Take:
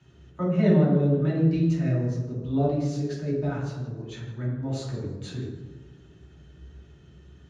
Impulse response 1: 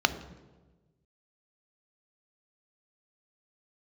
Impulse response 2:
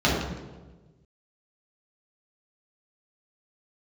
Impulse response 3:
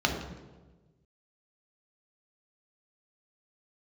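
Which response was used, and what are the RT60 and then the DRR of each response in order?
2; 1.3, 1.3, 1.3 s; 10.0, -7.5, 1.0 dB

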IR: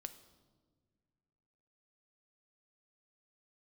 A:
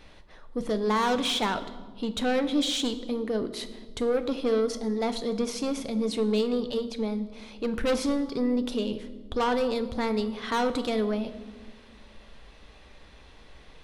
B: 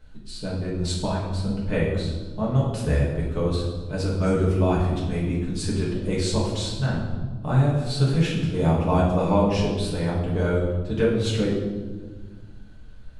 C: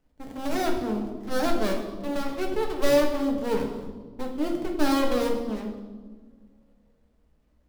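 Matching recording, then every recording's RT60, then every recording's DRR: A; not exponential, 1.4 s, 1.5 s; 9.5, -6.0, 0.5 dB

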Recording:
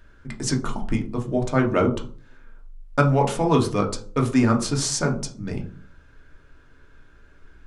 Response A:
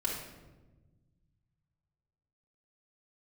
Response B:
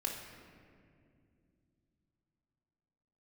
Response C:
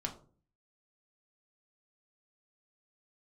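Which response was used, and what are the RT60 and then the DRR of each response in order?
C; 1.2, 2.4, 0.40 s; -4.5, 0.0, 1.0 dB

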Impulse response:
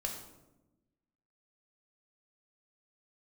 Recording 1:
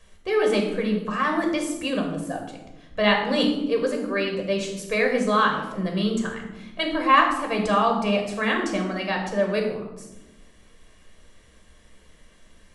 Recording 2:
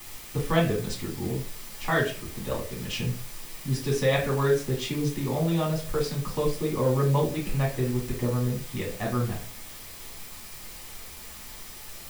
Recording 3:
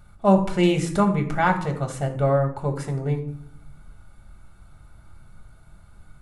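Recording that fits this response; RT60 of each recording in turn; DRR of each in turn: 1; 1.0, 0.40, 0.65 s; 1.0, -5.0, 3.0 dB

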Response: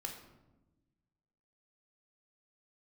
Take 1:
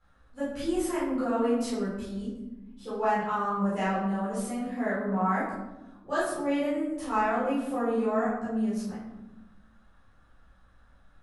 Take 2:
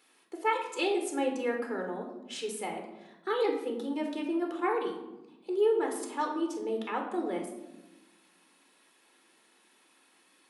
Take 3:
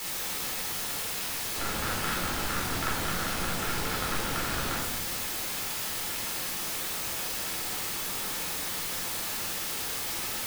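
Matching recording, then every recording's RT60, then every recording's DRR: 2; 1.0, 1.1, 1.1 s; -12.0, 2.0, -5.5 dB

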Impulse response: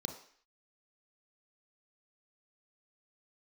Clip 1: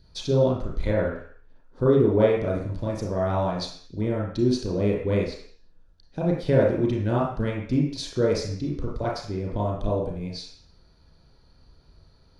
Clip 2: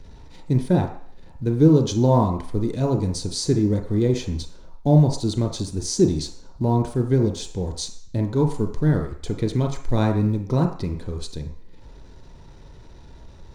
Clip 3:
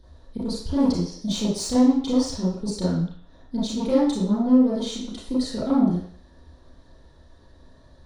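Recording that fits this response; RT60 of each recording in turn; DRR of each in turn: 2; 0.55, 0.55, 0.55 s; -4.0, 4.0, -10.5 dB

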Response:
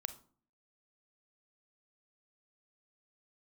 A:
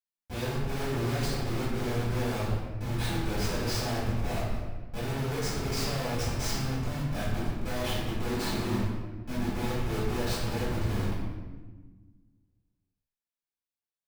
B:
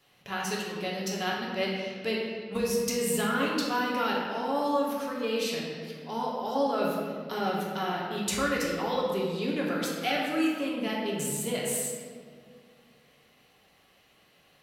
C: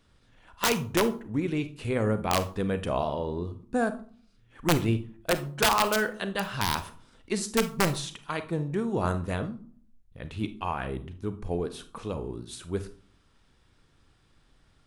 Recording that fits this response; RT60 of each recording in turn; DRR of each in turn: C; 1.3, 2.0, 0.45 s; -12.0, -4.0, 10.5 dB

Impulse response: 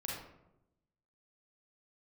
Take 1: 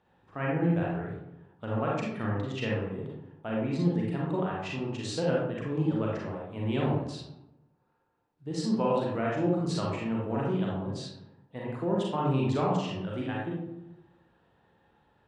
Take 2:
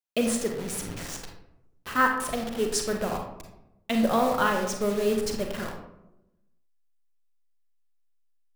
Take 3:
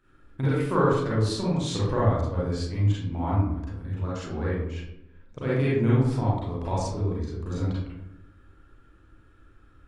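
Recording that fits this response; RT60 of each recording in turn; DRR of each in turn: 1; 0.90, 0.90, 0.90 s; -4.5, 2.5, -9.0 dB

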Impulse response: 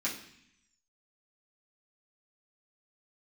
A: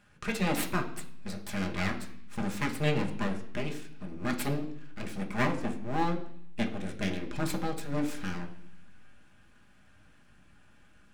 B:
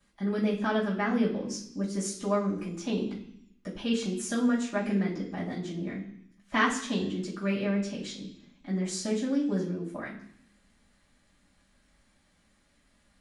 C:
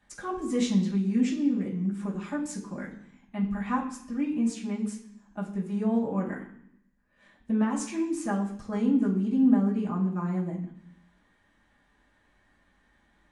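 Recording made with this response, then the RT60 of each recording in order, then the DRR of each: C; 0.65, 0.65, 0.65 s; 1.5, -13.5, -8.0 dB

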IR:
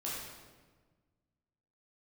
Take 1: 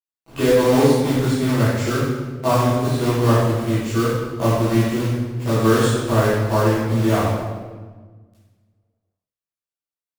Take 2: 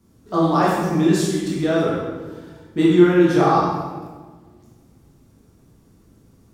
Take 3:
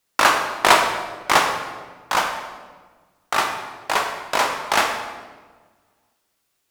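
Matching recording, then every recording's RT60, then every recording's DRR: 2; 1.4, 1.4, 1.4 s; -14.0, -7.0, 2.5 dB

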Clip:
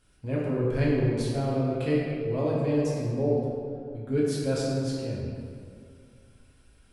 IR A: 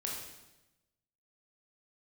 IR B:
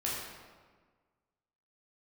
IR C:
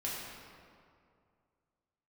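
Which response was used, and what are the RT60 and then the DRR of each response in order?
C; 1.0, 1.5, 2.3 s; -2.5, -6.0, -6.5 dB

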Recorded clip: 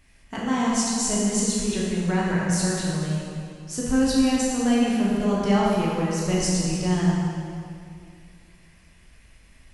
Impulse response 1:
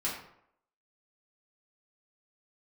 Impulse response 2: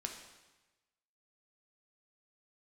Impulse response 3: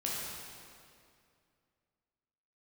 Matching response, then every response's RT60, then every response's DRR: 3; 0.70, 1.1, 2.4 s; -7.5, 2.5, -5.5 dB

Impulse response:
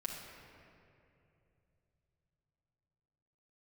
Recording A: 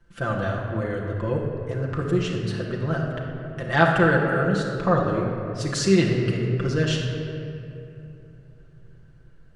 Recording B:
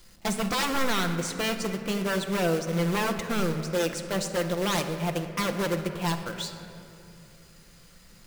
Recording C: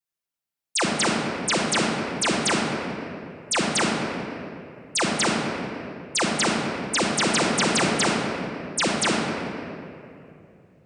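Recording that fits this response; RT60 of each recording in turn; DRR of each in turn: A; 2.8, 2.9, 2.8 s; -3.0, 5.0, -9.5 dB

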